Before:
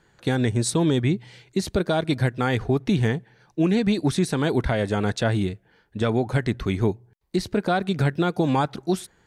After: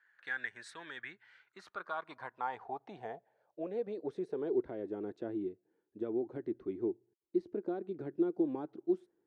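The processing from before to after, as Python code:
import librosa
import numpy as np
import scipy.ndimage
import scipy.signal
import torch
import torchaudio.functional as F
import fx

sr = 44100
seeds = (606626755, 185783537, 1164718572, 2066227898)

y = fx.low_shelf(x, sr, hz=390.0, db=-8.0)
y = fx.filter_sweep_bandpass(y, sr, from_hz=1700.0, to_hz=340.0, start_s=1.01, end_s=4.81, q=5.9)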